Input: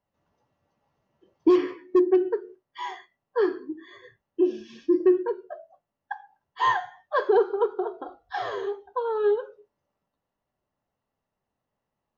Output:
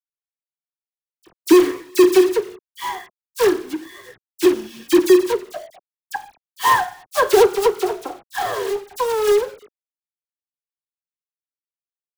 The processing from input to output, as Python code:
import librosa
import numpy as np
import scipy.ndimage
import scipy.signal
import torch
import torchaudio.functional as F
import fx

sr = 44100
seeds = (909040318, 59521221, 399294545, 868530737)

y = fx.quant_companded(x, sr, bits=4)
y = fx.dispersion(y, sr, late='lows', ms=42.0, hz=2500.0)
y = F.gain(torch.from_numpy(y), 7.0).numpy()